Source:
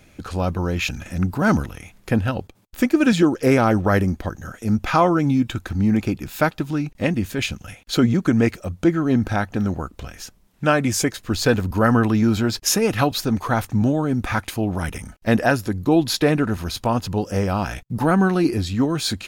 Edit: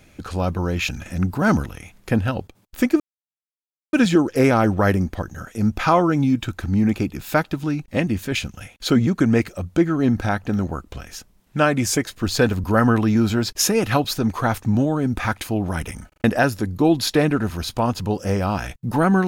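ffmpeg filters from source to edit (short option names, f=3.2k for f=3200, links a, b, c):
-filter_complex "[0:a]asplit=6[a][b][c][d][e][f];[a]atrim=end=3,asetpts=PTS-STARTPTS,afade=t=out:st=2.996:d=0.004:c=hsin,apad=pad_dur=0.93[g];[b]atrim=start=3:end=15.192,asetpts=PTS-STARTPTS,afade=t=in:d=0.004:c=hsin[h];[c]atrim=start=15.148:end=15.192[i];[d]atrim=start=15.148:end=15.192[j];[e]atrim=start=15.148:end=15.192[k];[f]atrim=start=15.308[l];[g][h]concat=n=2:v=0:a=1[m];[m][i]acrossfade=d=0.004:c1=hsin:c2=hsin[n];[n][j]acrossfade=d=0.004:c1=hsin:c2=hsin[o];[o][k]acrossfade=d=0.004:c1=hsin:c2=hsin[p];[p][l]acrossfade=d=0.004:c1=hsin:c2=hsin"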